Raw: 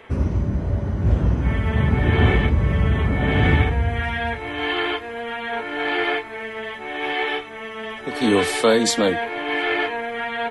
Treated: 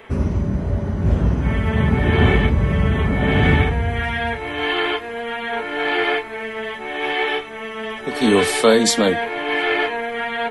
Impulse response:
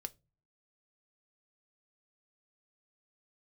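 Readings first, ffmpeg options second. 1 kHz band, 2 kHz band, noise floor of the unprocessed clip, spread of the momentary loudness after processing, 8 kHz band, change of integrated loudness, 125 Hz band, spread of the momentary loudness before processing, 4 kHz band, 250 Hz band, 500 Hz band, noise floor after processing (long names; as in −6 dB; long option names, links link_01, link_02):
+2.0 dB, +2.5 dB, −34 dBFS, 11 LU, +4.0 dB, +2.0 dB, +1.0 dB, 12 LU, +3.0 dB, +3.0 dB, +3.0 dB, −31 dBFS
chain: -filter_complex "[0:a]asplit=2[link_01][link_02];[1:a]atrim=start_sample=2205,highshelf=frequency=9700:gain=11[link_03];[link_02][link_03]afir=irnorm=-1:irlink=0,volume=1dB[link_04];[link_01][link_04]amix=inputs=2:normalize=0,volume=-2.5dB"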